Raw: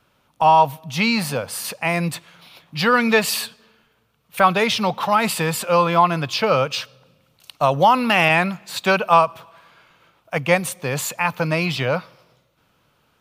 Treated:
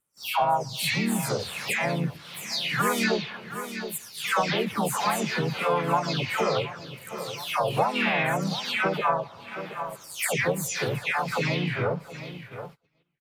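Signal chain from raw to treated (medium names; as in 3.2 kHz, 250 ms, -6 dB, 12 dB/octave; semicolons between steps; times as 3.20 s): delay that grows with frequency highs early, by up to 422 ms; on a send: feedback delay 722 ms, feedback 29%, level -22 dB; on the sum: gate -49 dBFS, range -29 dB; compression 2.5:1, threshold -34 dBFS, peak gain reduction 16 dB; harmony voices -3 st -3 dB, +5 st -13 dB, +7 st -17 dB; trim +3.5 dB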